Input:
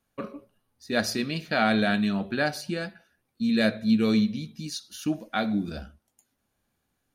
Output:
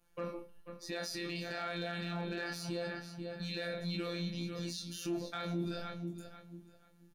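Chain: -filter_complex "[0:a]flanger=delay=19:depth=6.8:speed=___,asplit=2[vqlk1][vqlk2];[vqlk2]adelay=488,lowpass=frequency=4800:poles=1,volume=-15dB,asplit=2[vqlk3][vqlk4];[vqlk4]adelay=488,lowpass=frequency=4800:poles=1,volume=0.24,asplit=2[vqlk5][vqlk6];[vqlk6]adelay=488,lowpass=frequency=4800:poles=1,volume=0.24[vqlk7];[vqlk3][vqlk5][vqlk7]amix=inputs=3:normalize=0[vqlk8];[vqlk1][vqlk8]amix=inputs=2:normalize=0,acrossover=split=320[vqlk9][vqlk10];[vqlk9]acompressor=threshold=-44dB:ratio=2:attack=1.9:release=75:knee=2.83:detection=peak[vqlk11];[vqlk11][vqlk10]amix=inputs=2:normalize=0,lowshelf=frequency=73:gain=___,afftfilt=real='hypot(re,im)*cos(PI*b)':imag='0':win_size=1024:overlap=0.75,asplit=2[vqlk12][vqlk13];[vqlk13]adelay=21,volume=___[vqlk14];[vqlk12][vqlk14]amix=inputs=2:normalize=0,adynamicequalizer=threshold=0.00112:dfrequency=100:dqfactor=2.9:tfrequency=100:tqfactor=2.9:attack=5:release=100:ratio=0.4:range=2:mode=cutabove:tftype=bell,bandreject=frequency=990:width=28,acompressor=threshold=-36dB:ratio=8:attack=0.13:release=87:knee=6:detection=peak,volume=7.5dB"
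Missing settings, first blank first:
1.1, 9, -7.5dB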